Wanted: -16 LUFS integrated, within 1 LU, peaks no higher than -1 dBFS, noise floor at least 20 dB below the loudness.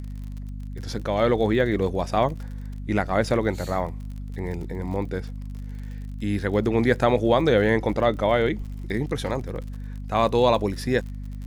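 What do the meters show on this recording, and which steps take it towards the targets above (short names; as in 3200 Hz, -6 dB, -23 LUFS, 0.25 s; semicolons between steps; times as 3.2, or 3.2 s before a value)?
ticks 46/s; hum 50 Hz; harmonics up to 250 Hz; hum level -31 dBFS; loudness -24.0 LUFS; peak -5.0 dBFS; loudness target -16.0 LUFS
-> de-click; de-hum 50 Hz, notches 5; gain +8 dB; limiter -1 dBFS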